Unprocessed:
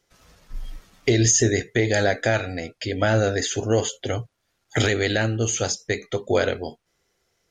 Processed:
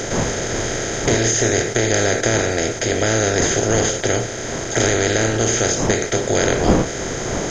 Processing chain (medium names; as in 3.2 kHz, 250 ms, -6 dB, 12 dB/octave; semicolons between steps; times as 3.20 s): spectral levelling over time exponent 0.2; wind noise 490 Hz -22 dBFS; trim -5 dB